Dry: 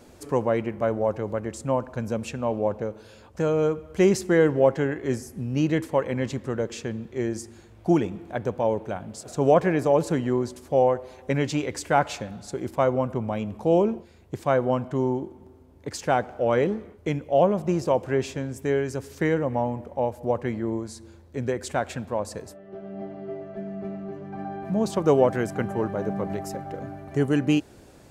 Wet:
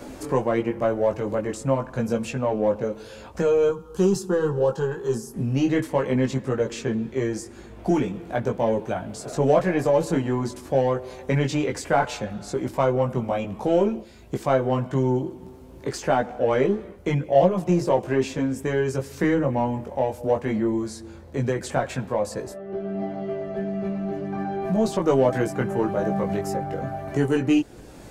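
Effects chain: in parallel at -8 dB: saturation -24 dBFS, distortion -7 dB; 3.69–5.34 s: on the sum: static phaser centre 420 Hz, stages 8; chorus voices 6, 0.12 Hz, delay 19 ms, depth 4.1 ms; three bands compressed up and down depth 40%; trim +3 dB

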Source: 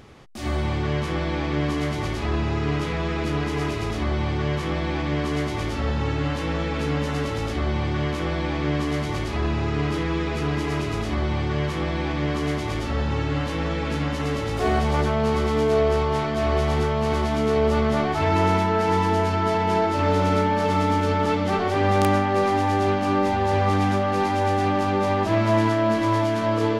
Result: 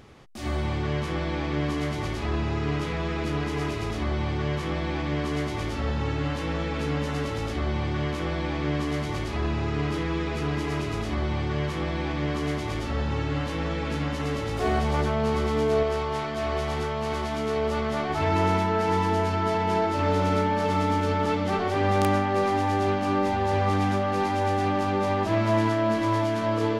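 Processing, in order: 15.83–18.10 s: bass shelf 470 Hz -5.5 dB; trim -3 dB

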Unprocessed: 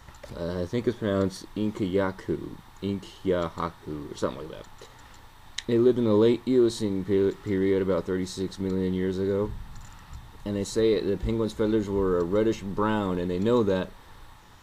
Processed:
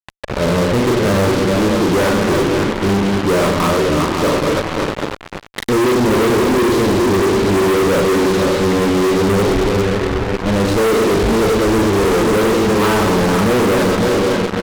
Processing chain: backward echo that repeats 273 ms, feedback 64%, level -6.5 dB; low-pass 2.4 kHz 12 dB/octave; on a send: reverse bouncing-ball echo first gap 40 ms, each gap 1.5×, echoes 5; on the sum: fuzz box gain 40 dB, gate -36 dBFS; trim +1 dB

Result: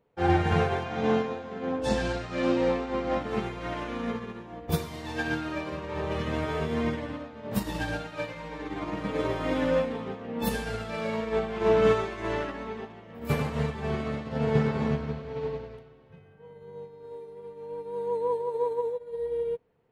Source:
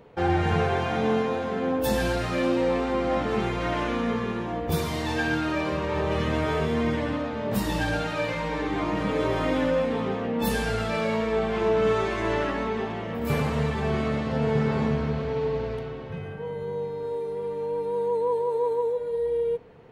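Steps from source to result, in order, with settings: 0.84–3.20 s: low-pass 7.8 kHz 24 dB/octave; upward expansion 2.5:1, over -35 dBFS; trim +2.5 dB

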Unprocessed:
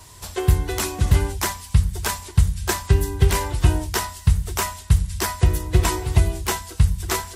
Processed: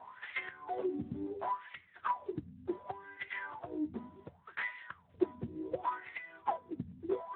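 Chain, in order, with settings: random-step tremolo; hum 50 Hz, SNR 25 dB; compression 5:1, threshold -33 dBFS, peak gain reduction 19.5 dB; wah-wah 0.69 Hz 240–2100 Hz, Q 8.2; 1.25–2.32 s: hum notches 50/100/150/200/250/300/350/400/450 Hz; trim +14.5 dB; Speex 11 kbps 8 kHz

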